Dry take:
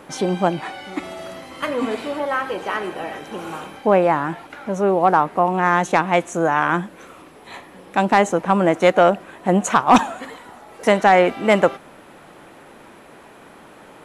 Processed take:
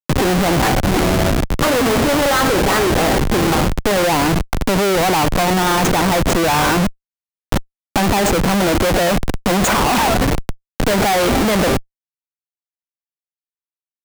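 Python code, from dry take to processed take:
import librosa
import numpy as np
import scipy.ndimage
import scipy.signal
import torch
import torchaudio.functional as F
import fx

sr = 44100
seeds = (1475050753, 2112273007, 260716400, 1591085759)

y = fx.env_lowpass(x, sr, base_hz=960.0, full_db=-15.5)
y = fx.schmitt(y, sr, flips_db=-31.5)
y = fx.band_squash(y, sr, depth_pct=40)
y = y * 10.0 ** (5.5 / 20.0)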